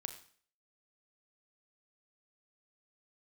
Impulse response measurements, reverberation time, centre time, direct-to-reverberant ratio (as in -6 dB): 0.50 s, 11 ms, 7.0 dB